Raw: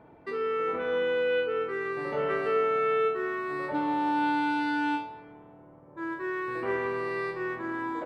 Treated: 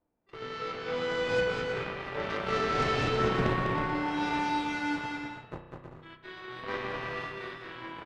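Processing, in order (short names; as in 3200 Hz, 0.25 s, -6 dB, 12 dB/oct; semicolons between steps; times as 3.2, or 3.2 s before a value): wind noise 460 Hz -40 dBFS; notches 50/100/150/200/250/300/350/400 Hz; gate -35 dBFS, range -10 dB; dynamic EQ 130 Hz, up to +7 dB, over -50 dBFS, Q 1.2; added harmonics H 2 -7 dB, 4 -18 dB, 5 -18 dB, 7 -12 dB, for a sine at -14 dBFS; flange 0.44 Hz, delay 3.1 ms, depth 9.1 ms, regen -56%; bouncing-ball echo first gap 0.2 s, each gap 0.6×, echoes 5; spring tank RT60 1.3 s, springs 32 ms, chirp 45 ms, DRR 7 dB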